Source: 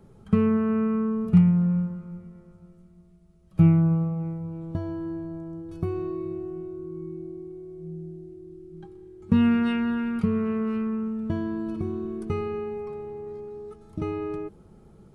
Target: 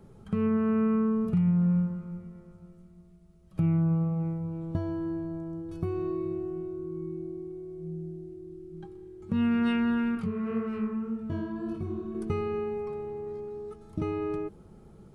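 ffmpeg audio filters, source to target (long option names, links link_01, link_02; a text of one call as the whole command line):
ffmpeg -i in.wav -filter_complex "[0:a]alimiter=limit=-18.5dB:level=0:latency=1:release=271,asettb=1/sr,asplit=3[link_01][link_02][link_03];[link_01]atrim=end=10.154[link_04];[link_02]atrim=start=10.15:end=12.15,asetpts=PTS-STARTPTS,afade=type=in:duration=0.004:curve=qsin,afade=type=out:start_time=1.996:duration=0.004:curve=qsin,flanger=delay=19.5:depth=6.8:speed=1.8[link_05];[link_03]atrim=start=12.146[link_06];[link_04][link_05]acrossfade=duration=0.004:curve1=hsin:curve2=qsin[link_07];[link_07][link_06]acrossfade=duration=0.004:curve1=qsin:curve2=hsin" out.wav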